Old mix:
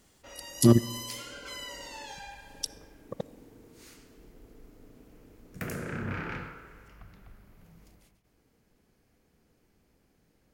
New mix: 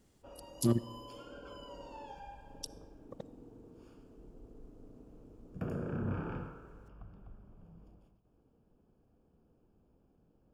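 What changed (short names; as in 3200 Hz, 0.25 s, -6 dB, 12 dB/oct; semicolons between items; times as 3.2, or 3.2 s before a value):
speech -10.0 dB; background: add running mean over 22 samples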